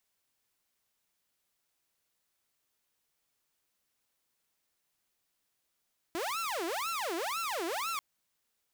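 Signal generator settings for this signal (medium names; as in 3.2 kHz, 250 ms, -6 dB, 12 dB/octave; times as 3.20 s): siren wail 327–1360 Hz 2 per s saw -30 dBFS 1.84 s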